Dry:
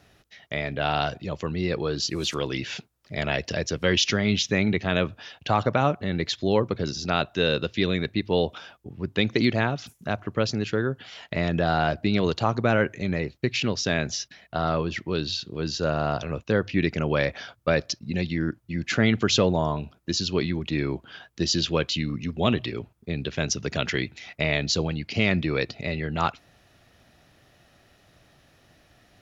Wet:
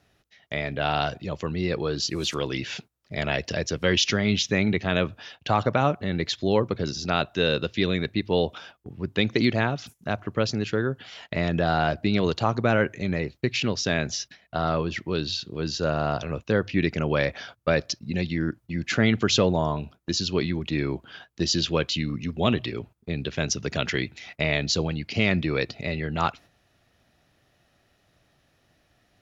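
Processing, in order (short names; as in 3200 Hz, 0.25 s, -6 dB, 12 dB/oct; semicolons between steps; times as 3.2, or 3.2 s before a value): gate -45 dBFS, range -7 dB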